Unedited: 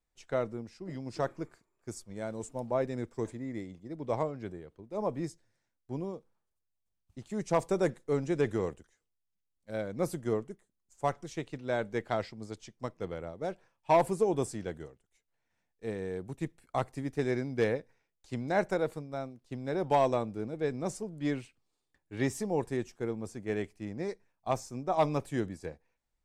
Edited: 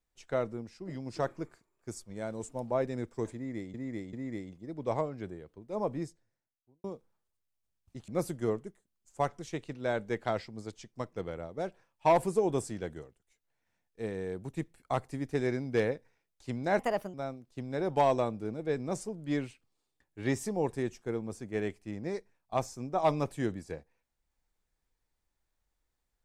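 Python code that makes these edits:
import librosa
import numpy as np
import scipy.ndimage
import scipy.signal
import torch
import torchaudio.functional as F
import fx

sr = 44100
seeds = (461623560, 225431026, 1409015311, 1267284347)

y = fx.studio_fade_out(x, sr, start_s=5.05, length_s=1.01)
y = fx.edit(y, sr, fx.repeat(start_s=3.35, length_s=0.39, count=3),
    fx.cut(start_s=7.3, length_s=2.62),
    fx.speed_span(start_s=18.63, length_s=0.45, speed=1.29), tone=tone)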